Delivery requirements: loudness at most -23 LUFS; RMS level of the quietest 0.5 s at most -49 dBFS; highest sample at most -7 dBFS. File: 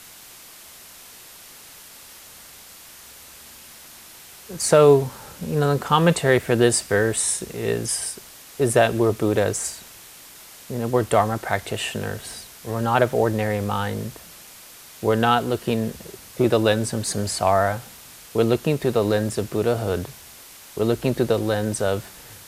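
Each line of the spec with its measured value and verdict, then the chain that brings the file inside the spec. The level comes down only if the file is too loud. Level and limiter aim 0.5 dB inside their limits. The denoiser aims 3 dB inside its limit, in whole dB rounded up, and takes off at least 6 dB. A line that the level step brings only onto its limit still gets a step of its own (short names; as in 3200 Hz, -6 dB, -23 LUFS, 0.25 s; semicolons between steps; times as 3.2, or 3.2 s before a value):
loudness -21.5 LUFS: fail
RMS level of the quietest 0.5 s -44 dBFS: fail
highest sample -3.5 dBFS: fail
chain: denoiser 6 dB, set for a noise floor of -44 dBFS; gain -2 dB; limiter -7.5 dBFS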